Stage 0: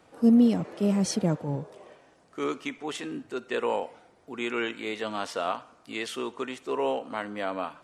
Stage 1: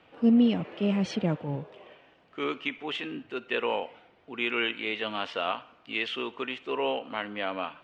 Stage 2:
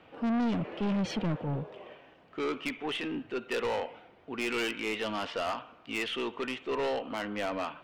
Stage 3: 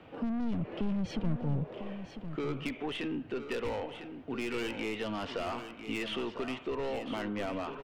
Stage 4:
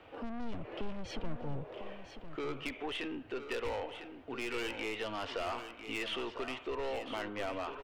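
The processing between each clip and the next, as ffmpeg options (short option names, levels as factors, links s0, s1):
-af "lowpass=f=2900:t=q:w=3.1,volume=0.794"
-filter_complex "[0:a]asplit=2[s0][s1];[s1]adynamicsmooth=sensitivity=1:basefreq=2500,volume=0.501[s2];[s0][s2]amix=inputs=2:normalize=0,aeval=exprs='0.355*(cos(1*acos(clip(val(0)/0.355,-1,1)))-cos(1*PI/2))+0.0447*(cos(4*acos(clip(val(0)/0.355,-1,1)))-cos(4*PI/2))':c=same,asoftclip=type=tanh:threshold=0.0473"
-filter_complex "[0:a]lowshelf=f=450:g=7.5,acrossover=split=110[s0][s1];[s1]acompressor=threshold=0.0224:ratio=6[s2];[s0][s2]amix=inputs=2:normalize=0,aecho=1:1:1000:0.316"
-af "equalizer=f=180:w=1.2:g=-14"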